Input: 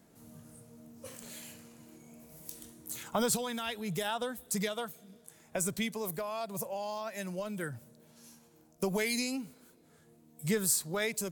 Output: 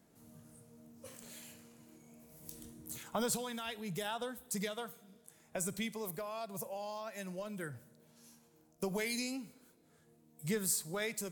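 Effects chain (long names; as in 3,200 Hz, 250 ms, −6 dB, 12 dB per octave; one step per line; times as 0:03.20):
0:02.42–0:02.98: low-shelf EQ 350 Hz +9 dB
four-comb reverb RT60 0.78 s, combs from 32 ms, DRR 18.5 dB
level −5 dB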